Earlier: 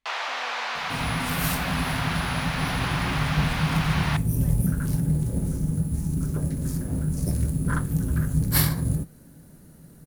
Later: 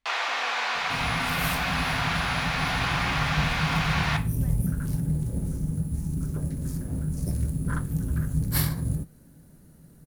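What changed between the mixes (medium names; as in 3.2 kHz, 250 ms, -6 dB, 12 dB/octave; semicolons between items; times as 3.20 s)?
first sound: send +11.5 dB; second sound -5.0 dB; master: add bass shelf 130 Hz +4 dB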